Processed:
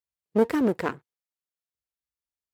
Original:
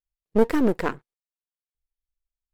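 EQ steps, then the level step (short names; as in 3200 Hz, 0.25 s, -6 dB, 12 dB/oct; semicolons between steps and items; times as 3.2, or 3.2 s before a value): HPF 71 Hz 24 dB/oct; -2.0 dB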